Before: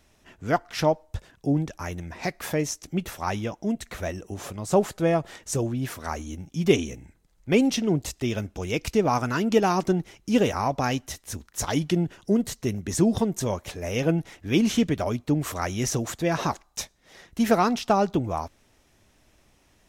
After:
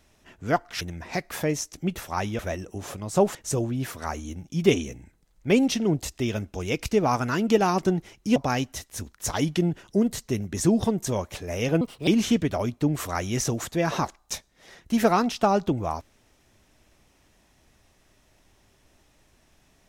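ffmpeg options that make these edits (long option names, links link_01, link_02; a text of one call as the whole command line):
ffmpeg -i in.wav -filter_complex "[0:a]asplit=7[link_01][link_02][link_03][link_04][link_05][link_06][link_07];[link_01]atrim=end=0.812[link_08];[link_02]atrim=start=1.908:end=3.492[link_09];[link_03]atrim=start=3.948:end=4.912[link_10];[link_04]atrim=start=5.368:end=10.382[link_11];[link_05]atrim=start=10.698:end=14.154[link_12];[link_06]atrim=start=14.15:end=14.54,asetpts=PTS-STARTPTS,asetrate=65268,aresample=44100[link_13];[link_07]atrim=start=14.536[link_14];[link_08][link_09]acrossfade=duration=0.004:curve1=hsin:curve2=hsin[link_15];[link_15][link_10]acrossfade=duration=0.004:curve1=hsin:curve2=hsin[link_16];[link_16][link_11]acrossfade=duration=0.004:curve1=hsin:curve2=hsin[link_17];[link_17][link_12]acrossfade=duration=0.004:curve1=hsin:curve2=hsin[link_18];[link_18][link_13]acrossfade=duration=0.004:curve1=hsin:curve2=hsin[link_19];[link_19][link_14]acrossfade=duration=0.004:curve1=hsin:curve2=hsin" out.wav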